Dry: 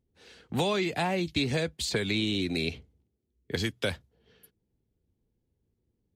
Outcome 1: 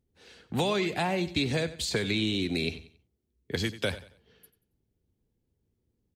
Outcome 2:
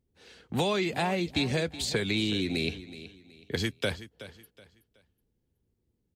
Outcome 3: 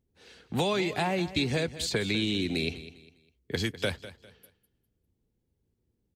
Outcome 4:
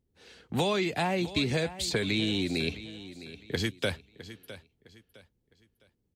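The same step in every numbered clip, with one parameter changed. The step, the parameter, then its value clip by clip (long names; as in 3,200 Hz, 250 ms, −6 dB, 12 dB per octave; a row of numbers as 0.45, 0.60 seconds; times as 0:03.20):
repeating echo, delay time: 92, 373, 201, 659 milliseconds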